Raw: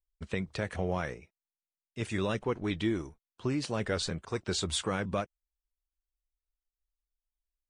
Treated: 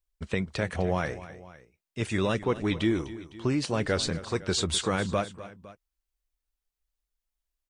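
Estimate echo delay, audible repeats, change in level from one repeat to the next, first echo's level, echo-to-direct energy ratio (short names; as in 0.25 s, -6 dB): 0.254 s, 2, -4.5 dB, -15.5 dB, -14.0 dB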